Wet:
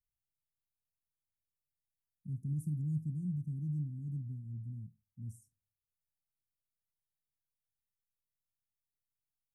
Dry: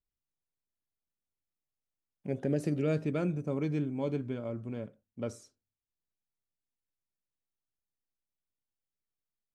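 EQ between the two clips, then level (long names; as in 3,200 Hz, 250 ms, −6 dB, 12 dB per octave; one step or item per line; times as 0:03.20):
inverse Chebyshev band-stop filter 560–3,100 Hz, stop band 70 dB
low-shelf EQ 130 Hz −10 dB
high-shelf EQ 6,900 Hz −8 dB
+7.0 dB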